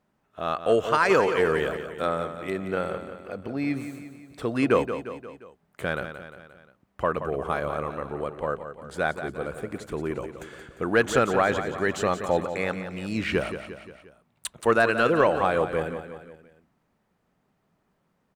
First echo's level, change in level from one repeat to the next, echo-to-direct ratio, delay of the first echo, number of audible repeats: −10.0 dB, −5.5 dB, −8.5 dB, 176 ms, 4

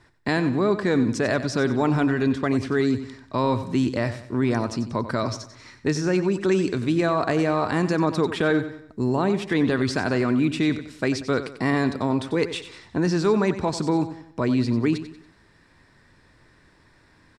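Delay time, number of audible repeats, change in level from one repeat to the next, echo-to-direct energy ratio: 93 ms, 3, −7.5 dB, −11.0 dB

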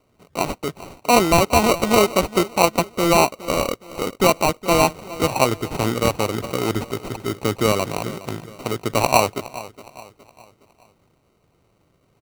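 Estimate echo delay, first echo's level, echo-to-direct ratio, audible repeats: 415 ms, −17.0 dB, −16.0 dB, 3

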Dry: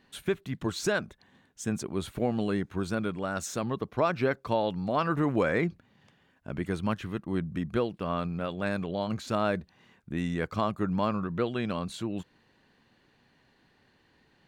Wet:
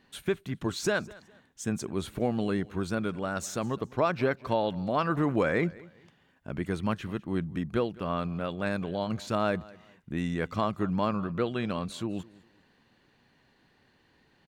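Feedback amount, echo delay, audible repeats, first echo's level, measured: 30%, 205 ms, 2, −22.0 dB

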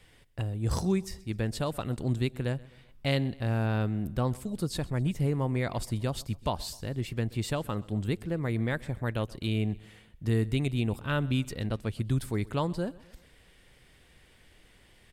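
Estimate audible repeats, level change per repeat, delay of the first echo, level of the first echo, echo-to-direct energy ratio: 3, −6.0 dB, 128 ms, −22.0 dB, −21.0 dB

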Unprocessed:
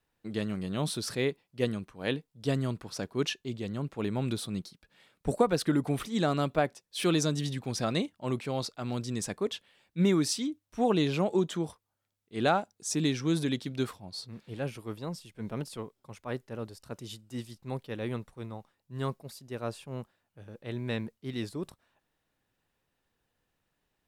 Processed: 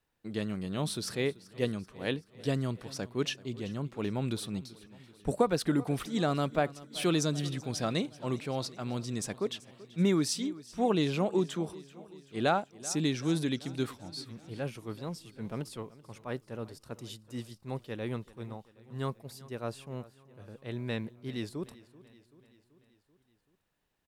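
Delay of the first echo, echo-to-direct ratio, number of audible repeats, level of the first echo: 384 ms, −17.5 dB, 4, −19.5 dB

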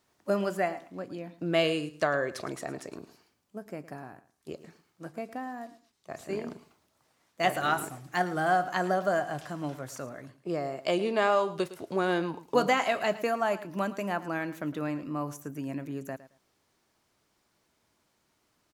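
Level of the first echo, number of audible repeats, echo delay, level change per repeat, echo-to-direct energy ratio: −16.0 dB, 2, 110 ms, −14.5 dB, −16.0 dB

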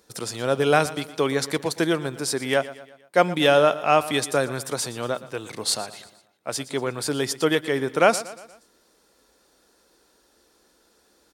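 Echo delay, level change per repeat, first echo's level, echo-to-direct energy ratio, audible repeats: 118 ms, −6.0 dB, −16.5 dB, −15.5 dB, 3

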